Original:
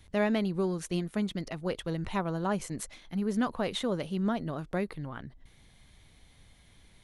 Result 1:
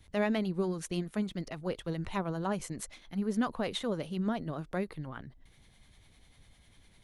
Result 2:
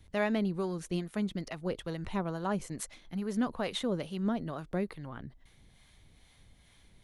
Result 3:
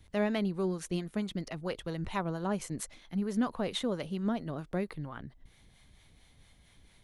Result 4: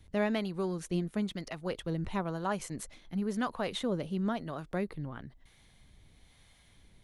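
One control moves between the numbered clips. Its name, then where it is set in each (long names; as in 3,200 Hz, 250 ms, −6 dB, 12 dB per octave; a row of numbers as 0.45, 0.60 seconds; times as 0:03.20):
two-band tremolo in antiphase, speed: 10, 2.3, 4.4, 1 Hertz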